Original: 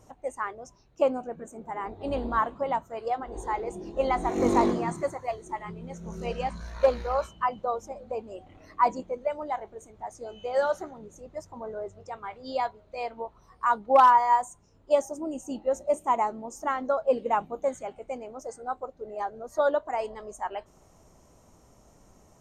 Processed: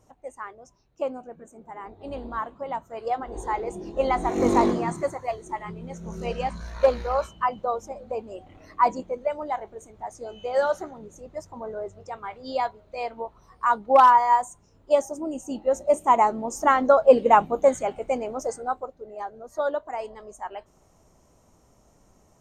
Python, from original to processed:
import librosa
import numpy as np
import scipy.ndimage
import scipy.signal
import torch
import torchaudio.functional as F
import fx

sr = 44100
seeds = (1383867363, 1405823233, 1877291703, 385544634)

y = fx.gain(x, sr, db=fx.line((2.58, -5.0), (3.13, 2.5), (15.49, 2.5), (16.63, 9.5), (18.46, 9.5), (19.06, -2.0)))